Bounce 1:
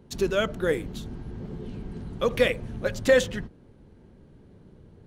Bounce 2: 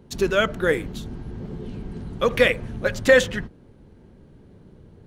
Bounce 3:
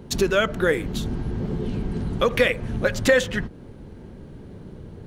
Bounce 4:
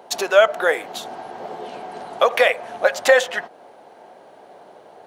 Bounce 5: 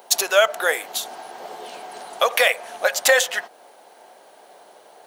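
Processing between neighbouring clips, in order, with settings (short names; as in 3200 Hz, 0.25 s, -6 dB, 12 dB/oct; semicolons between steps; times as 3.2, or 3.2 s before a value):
dynamic EQ 1700 Hz, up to +5 dB, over -41 dBFS, Q 0.92; gain +3 dB
compressor 2:1, threshold -32 dBFS, peak gain reduction 12.5 dB; gain +8.5 dB
resonant high-pass 710 Hz, resonance Q 5.1; gain +2.5 dB
RIAA curve recording; gain -2 dB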